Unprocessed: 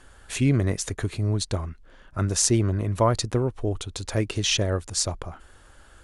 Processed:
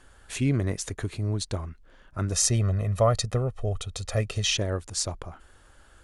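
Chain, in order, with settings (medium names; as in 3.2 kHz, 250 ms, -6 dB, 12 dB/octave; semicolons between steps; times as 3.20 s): 2.32–4.51 s: comb 1.6 ms, depth 76%; trim -3.5 dB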